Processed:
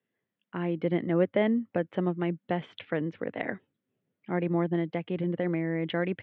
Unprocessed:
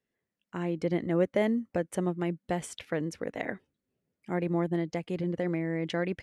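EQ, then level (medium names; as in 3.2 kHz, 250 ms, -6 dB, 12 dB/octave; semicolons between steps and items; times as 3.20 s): Chebyshev band-pass 100–3400 Hz, order 4; +2.0 dB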